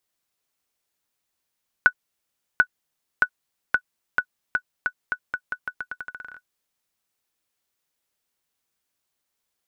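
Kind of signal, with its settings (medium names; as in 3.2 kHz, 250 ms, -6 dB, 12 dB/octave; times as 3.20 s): bouncing ball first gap 0.74 s, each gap 0.84, 1.48 kHz, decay 69 ms -3.5 dBFS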